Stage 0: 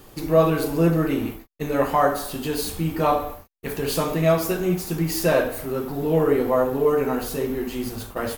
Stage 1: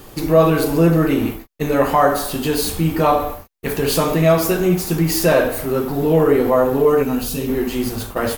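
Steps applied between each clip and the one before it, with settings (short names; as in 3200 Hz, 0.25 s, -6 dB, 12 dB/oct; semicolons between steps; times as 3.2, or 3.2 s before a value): spectral gain 7.03–7.48, 290–2300 Hz -9 dB; in parallel at -2 dB: limiter -16.5 dBFS, peak gain reduction 11.5 dB; on the sum: gain +2 dB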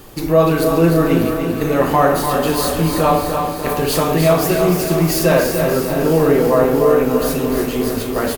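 feedback echo 0.296 s, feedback 51%, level -7 dB; lo-fi delay 0.331 s, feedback 80%, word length 6-bit, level -11 dB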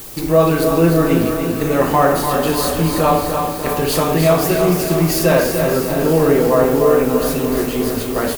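added noise blue -35 dBFS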